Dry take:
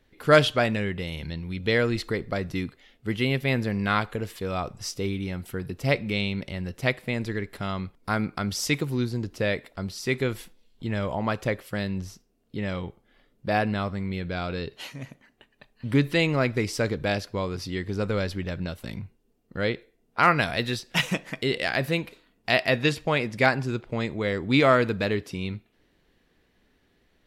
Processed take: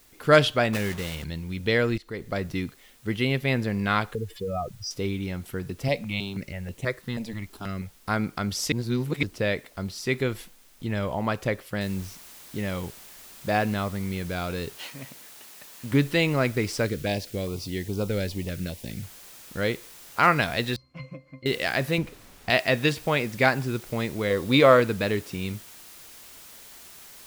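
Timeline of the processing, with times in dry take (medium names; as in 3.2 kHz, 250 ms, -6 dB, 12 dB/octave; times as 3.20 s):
0.73–1.25 s: block-companded coder 3-bit
1.98–2.38 s: fade in, from -21 dB
4.15–4.91 s: spectral contrast enhancement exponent 2.5
5.88–7.96 s: stepped phaser 6.2 Hz 370–4900 Hz
8.72–9.23 s: reverse
11.81 s: noise floor step -58 dB -47 dB
14.77–15.92 s: bass shelf 120 Hz -10.5 dB
16.86–19.03 s: step-sequenced notch 4.9 Hz 900–1800 Hz
20.76–21.46 s: pitch-class resonator C, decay 0.16 s
21.98–22.50 s: tilt EQ -2.5 dB/octave
24.30–24.80 s: small resonant body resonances 520/1100/3700 Hz, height 10 dB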